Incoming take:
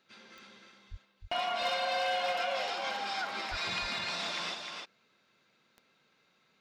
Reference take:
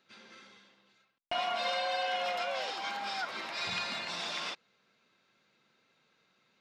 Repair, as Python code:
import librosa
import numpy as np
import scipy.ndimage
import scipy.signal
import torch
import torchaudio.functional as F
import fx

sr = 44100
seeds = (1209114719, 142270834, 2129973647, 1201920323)

y = fx.fix_declip(x, sr, threshold_db=-24.5)
y = fx.fix_declick_ar(y, sr, threshold=10.0)
y = fx.highpass(y, sr, hz=140.0, slope=24, at=(0.9, 1.02), fade=0.02)
y = fx.highpass(y, sr, hz=140.0, slope=24, at=(3.5, 3.62), fade=0.02)
y = fx.fix_echo_inverse(y, sr, delay_ms=306, level_db=-5.0)